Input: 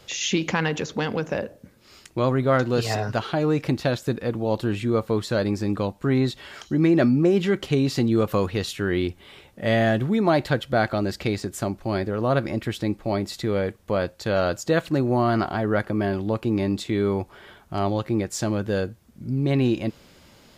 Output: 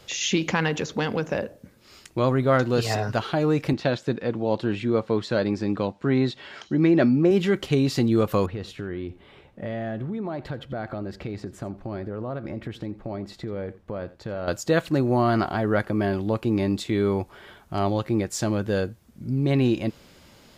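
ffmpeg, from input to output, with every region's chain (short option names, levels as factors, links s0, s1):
-filter_complex "[0:a]asettb=1/sr,asplit=3[s0][s1][s2];[s0]atrim=end=3.734[s3];[s1]atrim=start=3.73:end=7.31,asetpts=PTS-STARTPTS,afade=t=in:d=0.004:c=qsin,afade=t=out:st=3.576:d=0.004:c=qsin,highpass=120,lowpass=5000,bandreject=f=1200:w=21[s4];[s2]atrim=start=7.306[s5];[s3][s4]acrossfade=d=0.004:c1=hsin:c2=qsin[s6];[s6][s5]acrossfade=d=0.004:c1=qsin:c2=hsin,asettb=1/sr,asplit=3[s7][s8][s9];[s7]atrim=end=8.464[s10];[s8]atrim=start=8.46:end=14.48,asetpts=PTS-STARTPTS,afade=t=in:d=0.004:c=qsin,afade=t=out:st=6.016:d=0.004:c=qsin,lowpass=f=1300:p=1,acompressor=threshold=0.0398:ratio=5:attack=3.2:release=140:knee=1:detection=peak,aecho=1:1:85:0.126,atrim=end_sample=265482[s11];[s9]atrim=start=14.476[s12];[s10][s11]acrossfade=d=0.004:c1=hsin:c2=qsin[s13];[s13][s12]acrossfade=d=0.004:c1=qsin:c2=hsin"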